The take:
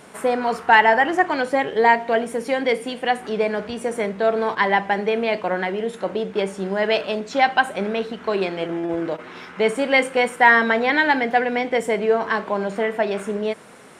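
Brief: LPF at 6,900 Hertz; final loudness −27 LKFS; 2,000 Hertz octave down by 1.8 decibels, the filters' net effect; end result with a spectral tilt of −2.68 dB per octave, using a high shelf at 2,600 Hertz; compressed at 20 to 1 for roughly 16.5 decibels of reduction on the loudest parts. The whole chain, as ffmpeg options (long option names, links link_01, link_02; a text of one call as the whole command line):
ffmpeg -i in.wav -af "lowpass=6900,equalizer=frequency=2000:width_type=o:gain=-5,highshelf=frequency=2600:gain=7.5,acompressor=threshold=-26dB:ratio=20,volume=4dB" out.wav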